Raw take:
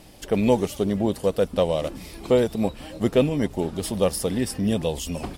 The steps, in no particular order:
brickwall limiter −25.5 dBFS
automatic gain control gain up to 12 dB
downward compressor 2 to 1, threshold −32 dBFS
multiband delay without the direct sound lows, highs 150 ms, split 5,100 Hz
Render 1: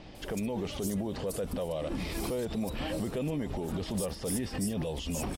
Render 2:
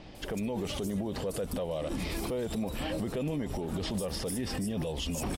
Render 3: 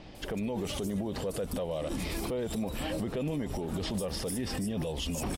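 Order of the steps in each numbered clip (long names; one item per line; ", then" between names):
downward compressor, then automatic gain control, then brickwall limiter, then multiband delay without the direct sound
downward compressor, then multiband delay without the direct sound, then automatic gain control, then brickwall limiter
multiband delay without the direct sound, then downward compressor, then automatic gain control, then brickwall limiter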